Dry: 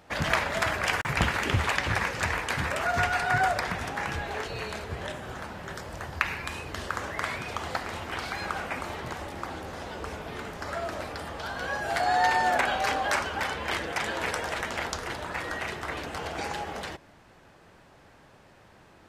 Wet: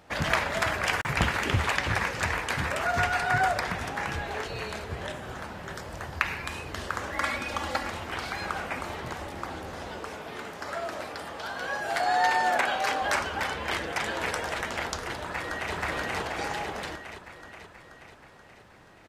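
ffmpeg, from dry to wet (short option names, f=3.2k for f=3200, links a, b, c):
-filter_complex "[0:a]asettb=1/sr,asplit=3[a][b][c];[a]atrim=end=7.124[d];[b]atrim=start=7.12:end=7.9,asetpts=PTS-STARTPTS,afade=t=in:d=0.004:c=qsin,afade=t=out:st=0.776:d=0.004:c=qsin,aecho=1:1:3.6:0.87,atrim=end_sample=34398[e];[c]atrim=start=7.896[f];[d][e]acrossfade=d=0.004:c1=hsin:c2=qsin[g];[g][f]acrossfade=d=0.004:c1=qsin:c2=hsin,asettb=1/sr,asplit=3[h][i][j];[h]atrim=end=9.994[k];[i]atrim=start=9.99:end=13.02,asetpts=PTS-STARTPTS,afade=t=in:d=0.004:c=qsin,afade=t=out:st=3.026:d=0.004:c=qsin,highpass=f=240:p=1[l];[j]atrim=start=13.016[m];[k][l]acrossfade=d=0.004:c1=hsin:c2=qsin[n];[n][m]acrossfade=d=0.004:c1=qsin:c2=hsin,asplit=2[o][p];[p]afade=t=in:st=15.2:d=0.01,afade=t=out:st=15.74:d=0.01,aecho=0:1:480|960|1440|1920|2400|2880|3360|3840|4320|4800:1|0.6|0.36|0.216|0.1296|0.07776|0.046656|0.0279936|0.0167962|0.0100777[q];[o][q]amix=inputs=2:normalize=0"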